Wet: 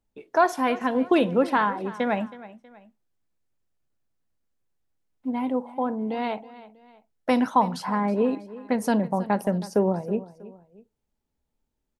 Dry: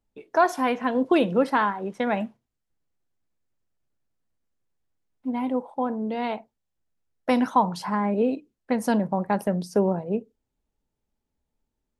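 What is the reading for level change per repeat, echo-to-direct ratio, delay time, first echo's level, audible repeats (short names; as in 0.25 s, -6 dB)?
-8.0 dB, -17.0 dB, 0.321 s, -17.5 dB, 2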